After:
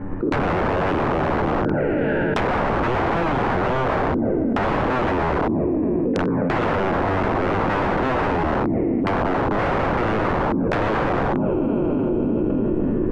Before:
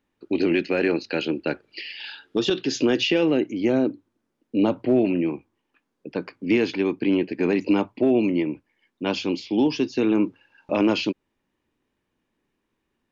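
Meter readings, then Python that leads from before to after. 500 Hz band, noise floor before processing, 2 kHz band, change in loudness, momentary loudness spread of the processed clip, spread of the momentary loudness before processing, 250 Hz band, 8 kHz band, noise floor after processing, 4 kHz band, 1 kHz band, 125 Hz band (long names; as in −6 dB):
+3.5 dB, −77 dBFS, +6.0 dB, +2.5 dB, 0 LU, 12 LU, +1.0 dB, can't be measured, −22 dBFS, −6.0 dB, +15.0 dB, +11.0 dB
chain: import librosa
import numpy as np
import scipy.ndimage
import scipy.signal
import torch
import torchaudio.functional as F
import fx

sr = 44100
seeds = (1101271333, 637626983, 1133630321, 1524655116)

p1 = fx.spec_trails(x, sr, decay_s=2.21)
p2 = scipy.signal.sosfilt(scipy.signal.butter(4, 1600.0, 'lowpass', fs=sr, output='sos'), p1)
p3 = fx.env_flanger(p2, sr, rest_ms=10.5, full_db=-18.5)
p4 = fx.tilt_eq(p3, sr, slope=-2.5)
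p5 = fx.transient(p4, sr, attack_db=0, sustain_db=4)
p6 = fx.level_steps(p5, sr, step_db=22)
p7 = p5 + (p6 * librosa.db_to_amplitude(-3.0))
p8 = (np.mod(10.0 ** (15.0 / 20.0) * p7 + 1.0, 2.0) - 1.0) / 10.0 ** (15.0 / 20.0)
p9 = fx.env_lowpass_down(p8, sr, base_hz=1100.0, full_db=-18.5)
p10 = fx.echo_bbd(p9, sr, ms=297, stages=1024, feedback_pct=54, wet_db=-13)
y = fx.env_flatten(p10, sr, amount_pct=100)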